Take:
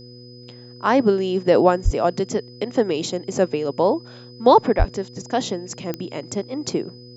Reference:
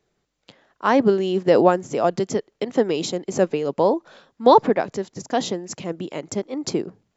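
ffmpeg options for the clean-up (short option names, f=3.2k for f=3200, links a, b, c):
-filter_complex "[0:a]adeclick=t=4,bandreject=f=122.3:t=h:w=4,bandreject=f=244.6:t=h:w=4,bandreject=f=366.9:t=h:w=4,bandreject=f=489.2:t=h:w=4,bandreject=f=5k:w=30,asplit=3[a][b][c];[a]afade=t=out:st=1.84:d=0.02[d];[b]highpass=f=140:w=0.5412,highpass=f=140:w=1.3066,afade=t=in:st=1.84:d=0.02,afade=t=out:st=1.96:d=0.02[e];[c]afade=t=in:st=1.96:d=0.02[f];[d][e][f]amix=inputs=3:normalize=0,asplit=3[g][h][i];[g]afade=t=out:st=4.78:d=0.02[j];[h]highpass=f=140:w=0.5412,highpass=f=140:w=1.3066,afade=t=in:st=4.78:d=0.02,afade=t=out:st=4.9:d=0.02[k];[i]afade=t=in:st=4.9:d=0.02[l];[j][k][l]amix=inputs=3:normalize=0"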